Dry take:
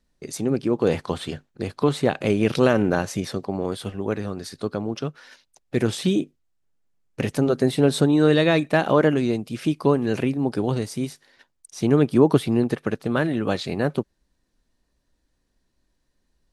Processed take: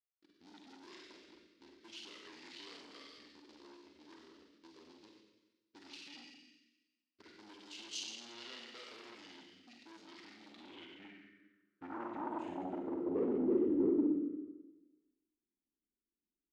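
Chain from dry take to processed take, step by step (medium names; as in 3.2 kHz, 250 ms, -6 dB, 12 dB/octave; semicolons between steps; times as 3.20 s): level-controlled noise filter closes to 310 Hz, open at -14 dBFS; dynamic bell 380 Hz, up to +5 dB, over -31 dBFS, Q 2.6; waveshaping leveller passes 2; compression 8:1, threshold -15 dBFS, peak gain reduction 9.5 dB; static phaser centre 430 Hz, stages 4; Schroeder reverb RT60 1.2 s, combs from 33 ms, DRR -1 dB; saturation -18 dBFS, distortion -10 dB; band-pass sweep 6 kHz -> 430 Hz, 10.34–13.64 s; pitch shift -4.5 st; trim -5 dB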